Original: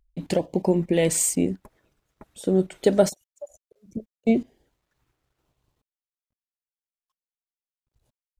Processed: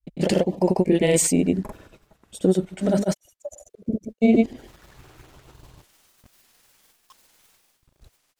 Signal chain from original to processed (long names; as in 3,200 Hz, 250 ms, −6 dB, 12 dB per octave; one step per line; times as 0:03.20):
brickwall limiter −13.5 dBFS, peak gain reduction 8 dB
reversed playback
upward compression, threshold −35 dBFS
reversed playback
granular cloud, spray 121 ms, pitch spread up and down by 0 semitones
level +6 dB